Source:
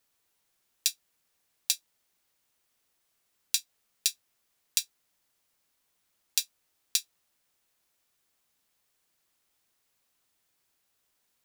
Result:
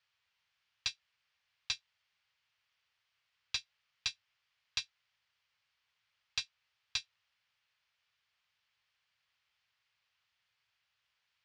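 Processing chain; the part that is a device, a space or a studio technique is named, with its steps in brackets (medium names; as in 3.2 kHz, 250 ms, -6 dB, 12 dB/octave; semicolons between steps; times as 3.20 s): scooped metal amplifier (valve stage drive 20 dB, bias 0.35; cabinet simulation 75–4000 Hz, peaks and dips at 110 Hz +6 dB, 690 Hz -3 dB, 3.8 kHz -5 dB; amplifier tone stack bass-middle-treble 10-0-10); trim +7.5 dB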